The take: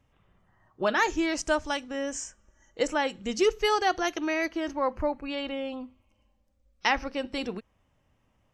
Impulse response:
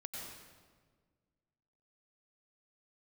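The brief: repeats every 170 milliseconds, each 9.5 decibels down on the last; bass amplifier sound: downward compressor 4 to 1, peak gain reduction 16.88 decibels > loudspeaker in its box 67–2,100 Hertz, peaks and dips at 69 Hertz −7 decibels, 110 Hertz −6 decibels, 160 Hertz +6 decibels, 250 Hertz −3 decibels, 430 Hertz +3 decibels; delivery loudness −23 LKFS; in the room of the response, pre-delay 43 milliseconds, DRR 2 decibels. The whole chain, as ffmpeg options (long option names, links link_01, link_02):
-filter_complex "[0:a]aecho=1:1:170|340|510|680:0.335|0.111|0.0365|0.012,asplit=2[link_01][link_02];[1:a]atrim=start_sample=2205,adelay=43[link_03];[link_02][link_03]afir=irnorm=-1:irlink=0,volume=-0.5dB[link_04];[link_01][link_04]amix=inputs=2:normalize=0,acompressor=threshold=-37dB:ratio=4,highpass=frequency=67:width=0.5412,highpass=frequency=67:width=1.3066,equalizer=frequency=69:width_type=q:width=4:gain=-7,equalizer=frequency=110:width_type=q:width=4:gain=-6,equalizer=frequency=160:width_type=q:width=4:gain=6,equalizer=frequency=250:width_type=q:width=4:gain=-3,equalizer=frequency=430:width_type=q:width=4:gain=3,lowpass=frequency=2100:width=0.5412,lowpass=frequency=2100:width=1.3066,volume=16dB"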